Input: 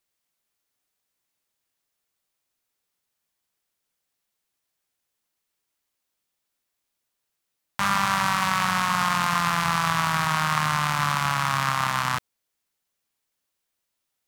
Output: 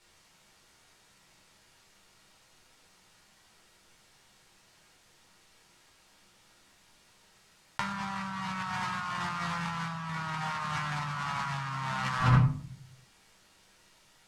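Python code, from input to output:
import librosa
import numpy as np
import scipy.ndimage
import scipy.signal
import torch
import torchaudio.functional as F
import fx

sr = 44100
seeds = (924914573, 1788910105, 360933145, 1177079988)

y = scipy.signal.sosfilt(scipy.signal.butter(2, 7200.0, 'lowpass', fs=sr, output='sos'), x)
y = fx.room_shoebox(y, sr, seeds[0], volume_m3=440.0, walls='furnished', distance_m=4.5)
y = fx.over_compress(y, sr, threshold_db=-33.0, ratio=-1.0)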